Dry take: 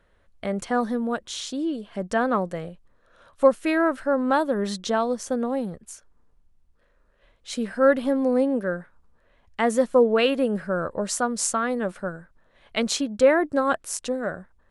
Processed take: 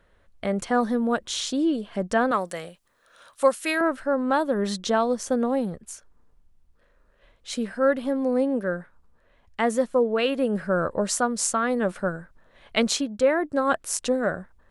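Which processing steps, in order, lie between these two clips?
2.31–3.81 s: tilt EQ +3.5 dB/octave; gain riding within 4 dB 0.5 s

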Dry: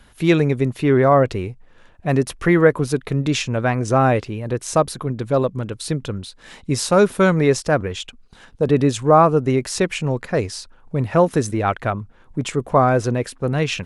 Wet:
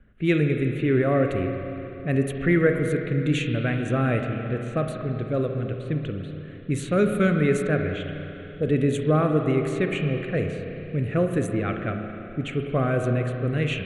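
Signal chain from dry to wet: static phaser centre 2.2 kHz, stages 4; level-controlled noise filter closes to 1.2 kHz, open at -16 dBFS; spring tank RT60 3.2 s, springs 33/52 ms, chirp 25 ms, DRR 4 dB; trim -4 dB

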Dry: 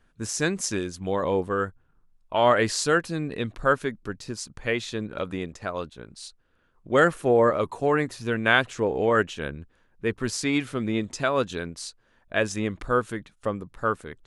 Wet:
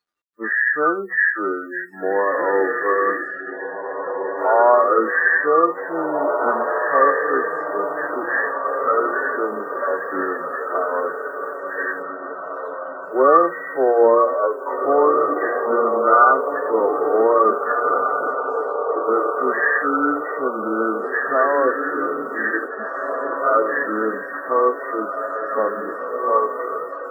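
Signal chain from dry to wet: knee-point frequency compression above 1.1 kHz 4:1; high-pass 320 Hz 24 dB/octave; hum notches 60/120/180/240/300/360/420/480/540 Hz; in parallel at +1 dB: compression 6:1, threshold -31 dBFS, peak gain reduction 17 dB; on the sum: time stretch by phase-locked vocoder 1.9×; word length cut 10-bit, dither none; on a send: echo that smears into a reverb 1849 ms, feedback 52%, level -5 dB; on the sum: spectral noise reduction 28 dB; trim +3.5 dB

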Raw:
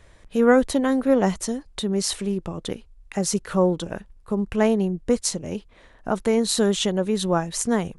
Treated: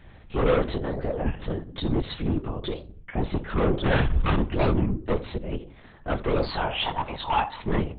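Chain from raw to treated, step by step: 0.68–1.28 s: compression 16:1, threshold -24 dBFS, peak gain reduction 12 dB; 3.85–4.36 s: fuzz box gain 50 dB, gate -57 dBFS; 6.43–7.60 s: resonant high-pass 930 Hz, resonance Q 7.2; hard clipper -20.5 dBFS, distortion -7 dB; reverberation RT60 0.50 s, pre-delay 6 ms, DRR 10 dB; LPC vocoder at 8 kHz whisper; warped record 33 1/3 rpm, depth 250 cents

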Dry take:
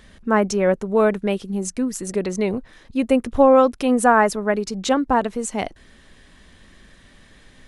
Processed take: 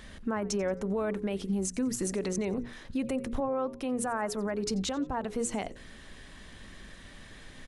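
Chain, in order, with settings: hum notches 60/120/180/240/300/360/420/480/540 Hz; compression 10:1, threshold -24 dBFS, peak gain reduction 15.5 dB; peak limiter -24 dBFS, peak gain reduction 10.5 dB; frequency-shifting echo 89 ms, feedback 38%, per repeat -130 Hz, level -21 dB; 3.40–5.25 s: three bands expanded up and down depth 40%; trim +1 dB

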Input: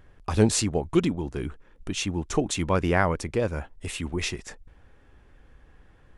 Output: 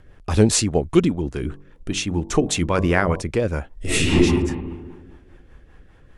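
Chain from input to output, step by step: 1.38–3.22 s: de-hum 47.59 Hz, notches 24; 3.74–4.17 s: reverb throw, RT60 1.6 s, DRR -11.5 dB; rotary cabinet horn 5 Hz; trim +7 dB

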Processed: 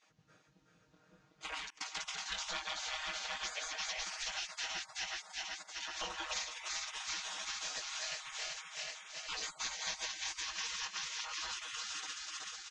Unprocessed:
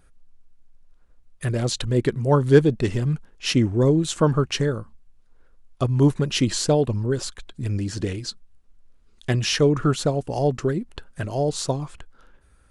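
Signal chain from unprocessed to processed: backward echo that repeats 188 ms, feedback 77%, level -1 dB; feedback echo behind a high-pass 164 ms, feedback 41%, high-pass 2 kHz, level -14 dB; chorus 0.53 Hz, delay 18.5 ms, depth 4.5 ms; spectral gate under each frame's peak -30 dB weak; comb 6.4 ms, depth 81%; 1.70–2.26 s: gate -40 dBFS, range -26 dB; compression 6:1, threshold -41 dBFS, peak gain reduction 13.5 dB; elliptic low-pass 6.7 kHz, stop band 60 dB; trim +4.5 dB

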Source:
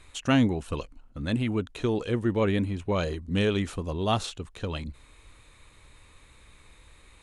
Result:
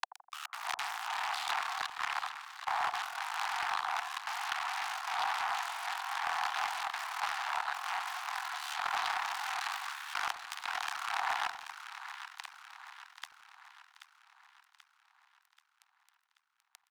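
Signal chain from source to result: time reversed locally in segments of 114 ms; speed mistake 78 rpm record played at 33 rpm; delay 412 ms -18 dB; ring modulator 37 Hz; harmonic-percussive split percussive -17 dB; fuzz box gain 49 dB, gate -46 dBFS; steep high-pass 740 Hz 96 dB/octave; compressor with a negative ratio -37 dBFS, ratio -1; saturation -23 dBFS, distortion -17 dB; two-band feedback delay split 980 Hz, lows 83 ms, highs 783 ms, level -10 dB

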